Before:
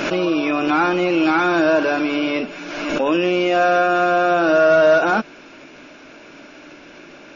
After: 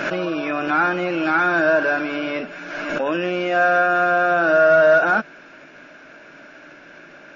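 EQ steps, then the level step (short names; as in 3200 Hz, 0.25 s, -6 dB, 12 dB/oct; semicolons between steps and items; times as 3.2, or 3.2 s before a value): fifteen-band EQ 160 Hz +6 dB, 630 Hz +6 dB, 1600 Hz +12 dB; -7.5 dB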